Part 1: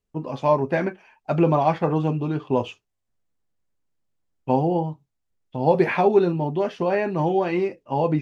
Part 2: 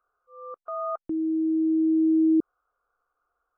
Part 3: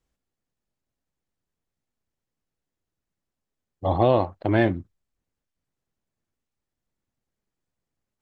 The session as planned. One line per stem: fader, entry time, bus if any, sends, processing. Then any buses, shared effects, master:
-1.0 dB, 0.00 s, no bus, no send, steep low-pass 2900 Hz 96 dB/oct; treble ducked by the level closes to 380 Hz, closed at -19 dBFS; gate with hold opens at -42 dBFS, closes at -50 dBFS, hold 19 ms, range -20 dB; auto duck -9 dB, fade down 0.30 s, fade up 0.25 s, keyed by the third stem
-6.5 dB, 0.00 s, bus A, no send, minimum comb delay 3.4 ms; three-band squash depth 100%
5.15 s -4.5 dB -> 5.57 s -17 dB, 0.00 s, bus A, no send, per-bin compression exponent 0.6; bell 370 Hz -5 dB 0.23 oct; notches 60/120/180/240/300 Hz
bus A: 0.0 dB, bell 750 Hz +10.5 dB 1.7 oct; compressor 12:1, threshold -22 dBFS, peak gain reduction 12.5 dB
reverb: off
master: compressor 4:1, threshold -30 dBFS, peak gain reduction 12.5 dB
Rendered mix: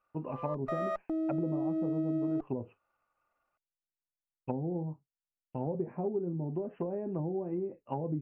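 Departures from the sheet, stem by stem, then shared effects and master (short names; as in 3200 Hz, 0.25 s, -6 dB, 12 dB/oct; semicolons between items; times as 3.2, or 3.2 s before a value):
stem 1 -1.0 dB -> -7.5 dB; stem 2: missing three-band squash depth 100%; stem 3: muted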